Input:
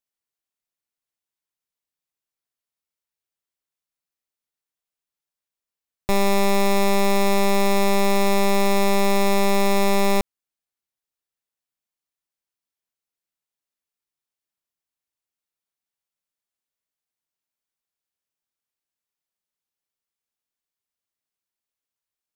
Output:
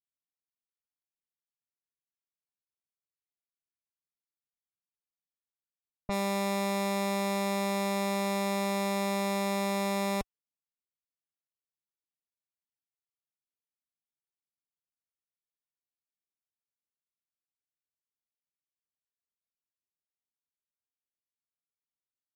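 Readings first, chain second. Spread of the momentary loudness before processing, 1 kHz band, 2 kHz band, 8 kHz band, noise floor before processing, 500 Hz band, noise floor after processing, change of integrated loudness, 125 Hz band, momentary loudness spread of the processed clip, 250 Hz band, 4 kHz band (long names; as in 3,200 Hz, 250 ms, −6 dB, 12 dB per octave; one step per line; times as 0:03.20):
3 LU, −9.5 dB, −9.5 dB, −9.5 dB, below −85 dBFS, −10.5 dB, below −85 dBFS, −10.0 dB, can't be measured, 3 LU, −8.5 dB, −9.5 dB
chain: notch comb filter 370 Hz
low-pass that shuts in the quiet parts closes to 330 Hz, open at −19 dBFS
level −8.5 dB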